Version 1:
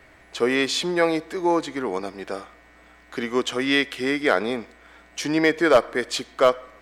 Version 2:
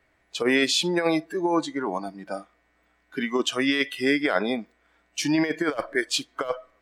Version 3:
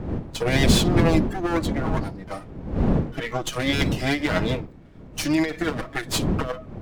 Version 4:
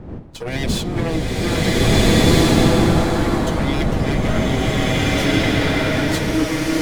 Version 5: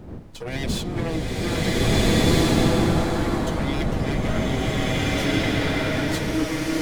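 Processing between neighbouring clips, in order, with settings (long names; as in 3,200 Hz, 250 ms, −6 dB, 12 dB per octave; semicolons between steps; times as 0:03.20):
noise reduction from a noise print of the clip's start 17 dB; compressor whose output falls as the input rises −21 dBFS, ratio −0.5
lower of the sound and its delayed copy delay 6.3 ms; wind on the microphone 240 Hz −27 dBFS; every ending faded ahead of time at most 190 dB per second; level +1.5 dB
slow-attack reverb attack 1,680 ms, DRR −10.5 dB; level −4 dB
background noise brown −41 dBFS; level −5 dB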